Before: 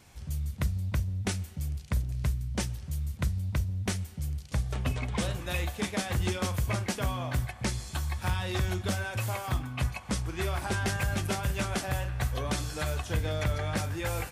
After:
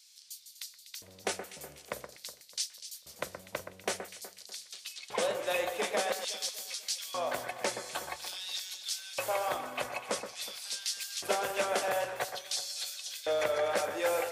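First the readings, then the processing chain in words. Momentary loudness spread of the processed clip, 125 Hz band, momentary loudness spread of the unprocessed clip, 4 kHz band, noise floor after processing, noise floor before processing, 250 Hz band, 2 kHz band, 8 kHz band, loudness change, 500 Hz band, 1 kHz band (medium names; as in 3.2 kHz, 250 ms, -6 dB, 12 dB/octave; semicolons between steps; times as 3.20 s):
13 LU, -28.5 dB, 4 LU, +2.5 dB, -57 dBFS, -46 dBFS, -13.0 dB, -2.0 dB, +2.0 dB, -2.5 dB, +4.0 dB, +1.0 dB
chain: LFO high-pass square 0.49 Hz 520–4400 Hz; echo whose repeats swap between lows and highs 123 ms, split 2 kHz, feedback 63%, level -8 dB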